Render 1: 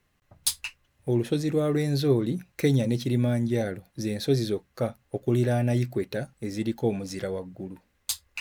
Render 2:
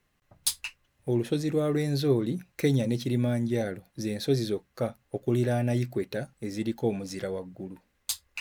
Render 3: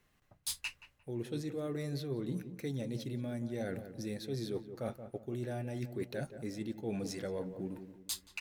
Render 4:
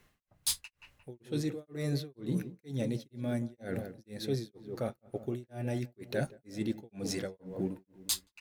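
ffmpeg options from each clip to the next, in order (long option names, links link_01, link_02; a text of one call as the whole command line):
ffmpeg -i in.wav -af "equalizer=frequency=82:width=1.5:gain=-3.5,volume=-1.5dB" out.wav
ffmpeg -i in.wav -filter_complex "[0:a]areverse,acompressor=threshold=-35dB:ratio=10,areverse,asplit=2[link_01][link_02];[link_02]adelay=176,lowpass=frequency=1100:poles=1,volume=-9.5dB,asplit=2[link_03][link_04];[link_04]adelay=176,lowpass=frequency=1100:poles=1,volume=0.41,asplit=2[link_05][link_06];[link_06]adelay=176,lowpass=frequency=1100:poles=1,volume=0.41,asplit=2[link_07][link_08];[link_08]adelay=176,lowpass=frequency=1100:poles=1,volume=0.41[link_09];[link_01][link_03][link_05][link_07][link_09]amix=inputs=5:normalize=0" out.wav
ffmpeg -i in.wav -af "tremolo=f=2.1:d=1,volume=7dB" out.wav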